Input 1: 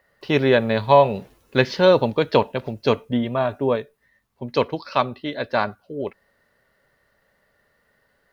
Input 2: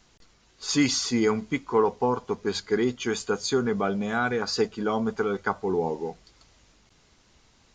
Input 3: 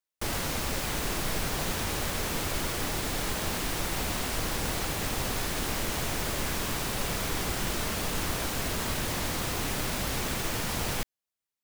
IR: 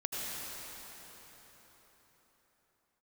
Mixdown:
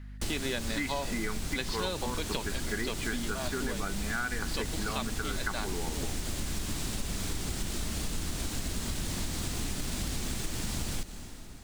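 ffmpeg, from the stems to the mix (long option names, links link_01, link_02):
-filter_complex "[0:a]highpass=160,aeval=exprs='val(0)+0.0178*(sin(2*PI*50*n/s)+sin(2*PI*2*50*n/s)/2+sin(2*PI*3*50*n/s)/3+sin(2*PI*4*50*n/s)/4+sin(2*PI*5*50*n/s)/5)':channel_layout=same,volume=-6dB[link_01];[1:a]lowpass=frequency=1800:width_type=q:width=3.2,volume=-2.5dB[link_02];[2:a]tiltshelf=frequency=780:gain=6.5,volume=-2dB,asplit=2[link_03][link_04];[link_04]volume=-14.5dB[link_05];[3:a]atrim=start_sample=2205[link_06];[link_05][link_06]afir=irnorm=-1:irlink=0[link_07];[link_01][link_02][link_03][link_07]amix=inputs=4:normalize=0,equalizer=frequency=125:width_type=o:width=1:gain=-5,equalizer=frequency=500:width_type=o:width=1:gain=-8,equalizer=frequency=1000:width_type=o:width=1:gain=-4,equalizer=frequency=4000:width_type=o:width=1:gain=5,equalizer=frequency=8000:width_type=o:width=1:gain=9,acompressor=threshold=-29dB:ratio=6"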